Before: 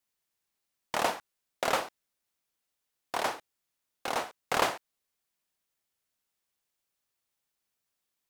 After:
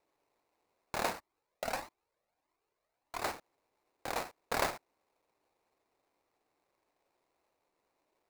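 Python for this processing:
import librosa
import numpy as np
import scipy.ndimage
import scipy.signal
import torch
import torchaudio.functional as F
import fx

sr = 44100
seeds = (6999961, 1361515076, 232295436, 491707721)

y = fx.dmg_noise_band(x, sr, seeds[0], low_hz=290.0, high_hz=1100.0, level_db=-76.0)
y = fx.sample_hold(y, sr, seeds[1], rate_hz=3200.0, jitter_pct=20)
y = fx.comb_cascade(y, sr, direction='rising', hz=1.6, at=(1.18, 3.21), fade=0.02)
y = F.gain(torch.from_numpy(y), -5.0).numpy()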